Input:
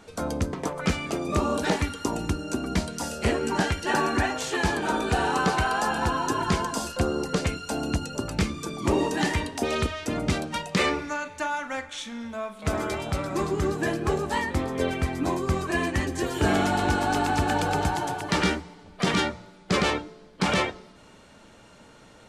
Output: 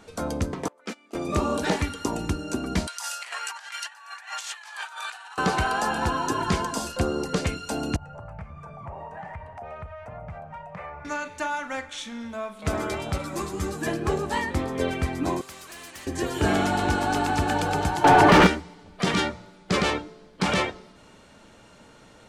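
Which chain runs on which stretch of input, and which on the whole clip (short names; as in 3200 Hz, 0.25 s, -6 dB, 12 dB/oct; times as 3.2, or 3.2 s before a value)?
0.68–1.15 steep high-pass 200 Hz 72 dB/oct + gate -28 dBFS, range -24 dB + compressor 2:1, threshold -33 dBFS
2.87–5.38 inverse Chebyshev high-pass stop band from 290 Hz, stop band 60 dB + negative-ratio compressor -36 dBFS, ratio -0.5
7.96–11.05 EQ curve 140 Hz 0 dB, 310 Hz -27 dB, 450 Hz -13 dB, 660 Hz +4 dB, 2300 Hz -10 dB, 3800 Hz -29 dB + compressor 3:1, threshold -37 dBFS
13.18–13.87 high shelf 5800 Hz +10.5 dB + notch 410 Hz, Q 10 + ensemble effect
15.41–16.07 pre-emphasis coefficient 0.9 + overdrive pedal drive 16 dB, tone 1300 Hz, clips at -22.5 dBFS + spectral compressor 2:1
18.04–18.47 low shelf 360 Hz +9.5 dB + overdrive pedal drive 27 dB, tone 1500 Hz, clips at -6.5 dBFS + fast leveller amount 70%
whole clip: dry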